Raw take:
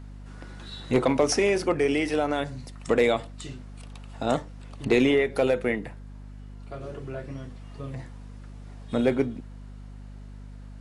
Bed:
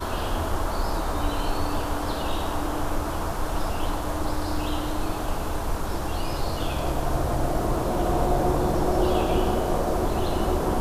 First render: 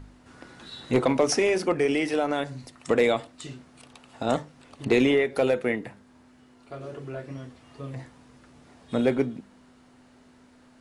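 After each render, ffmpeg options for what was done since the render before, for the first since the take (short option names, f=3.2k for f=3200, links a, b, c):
-af "bandreject=f=50:t=h:w=4,bandreject=f=100:t=h:w=4,bandreject=f=150:t=h:w=4,bandreject=f=200:t=h:w=4"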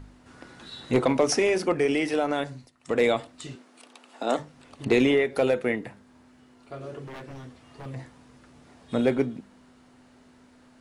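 -filter_complex "[0:a]asettb=1/sr,asplit=3[a][b][c];[a]atrim=end=3.554[d];[b]atrim=start=3.55:end=4.39,asetpts=PTS-STARTPTS,afade=t=in:d=0.004:c=qsin,afade=t=out:st=0.836:d=0.004:c=qsin,highpass=f=250:w=0.5412,highpass=f=250:w=1.3066[e];[c]atrim=start=4.386[f];[d][e]acrossfade=d=0.004:c1=hsin:c2=qsin[g];[g][f]acrossfade=d=0.004:c1=qsin:c2=hsin,asettb=1/sr,asplit=3[h][i][j];[h]atrim=end=7.064[k];[i]atrim=start=7.06:end=7.86,asetpts=PTS-STARTPTS,afade=t=in:d=0.004:c=qsin,afade=t=out:st=0.796:d=0.004:c=qsin,aeval=exprs='0.0178*(abs(mod(val(0)/0.0178+3,4)-2)-1)':c=same[l];[j]atrim=start=7.856[m];[k][l]acrossfade=d=0.004:c1=hsin:c2=qsin[n];[n][m]acrossfade=d=0.004:c1=qsin:c2=hsin,asplit=3[o][p][q];[o]atrim=end=2.7,asetpts=PTS-STARTPTS,afade=t=out:st=2.46:d=0.24:silence=0.211349[r];[p]atrim=start=2.7:end=2.8,asetpts=PTS-STARTPTS,volume=-13.5dB[s];[q]atrim=start=2.8,asetpts=PTS-STARTPTS,afade=t=in:d=0.24:silence=0.211349[t];[r][s][t]concat=n=3:v=0:a=1"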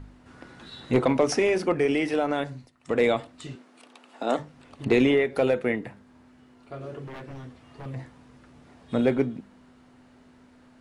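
-af "bass=f=250:g=2,treble=f=4k:g=-5"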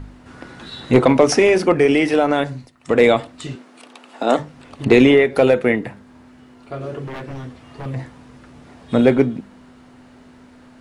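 -af "volume=9dB"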